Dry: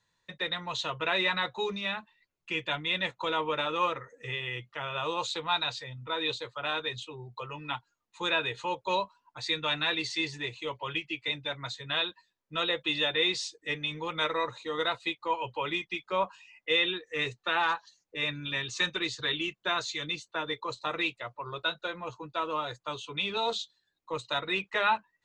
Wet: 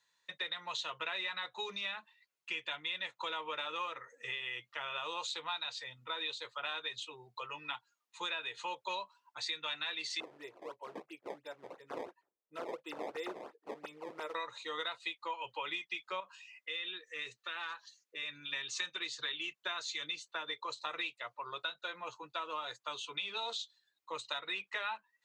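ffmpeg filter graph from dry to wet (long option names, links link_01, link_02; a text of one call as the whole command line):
ffmpeg -i in.wav -filter_complex "[0:a]asettb=1/sr,asplit=3[link_01][link_02][link_03];[link_01]atrim=end=10.204[link_04];[link_02]atrim=start=10.2:end=14.35,asetpts=PTS-STARTPTS,afade=type=in:duration=0.004:curve=qsin,afade=type=out:start_time=4.146:duration=0.004:curve=qsin,acrusher=samples=18:mix=1:aa=0.000001:lfo=1:lforange=28.8:lforate=2.9,bandpass=frequency=410:width_type=q:width=1.1[link_05];[link_03]atrim=start=14.346[link_06];[link_04][link_05]acrossfade=duration=0.004:curve1=hsin:curve2=qsin[link_07];[link_07][link_06]acrossfade=duration=0.004:curve1=qsin:curve2=hsin,asettb=1/sr,asplit=3[link_08][link_09][link_10];[link_08]atrim=end=16.204[link_11];[link_09]atrim=start=16.2:end=18.53,asetpts=PTS-STARTPTS,afade=type=in:duration=0.004:curve=qsin,afade=type=out:start_time=2.326:duration=0.004:curve=qsin,equalizer=frequency=790:width=2.7:gain=-9,acompressor=threshold=-42dB:ratio=2:attack=3.2:release=140:knee=1:detection=peak[link_12];[link_10]atrim=start=18.526[link_13];[link_11][link_12]acrossfade=duration=0.004:curve1=hsin:curve2=qsin[link_14];[link_14][link_13]acrossfade=duration=0.004:curve1=qsin:curve2=hsin,highpass=frequency=1200:poles=1,acompressor=threshold=-37dB:ratio=5,volume=1dB" out.wav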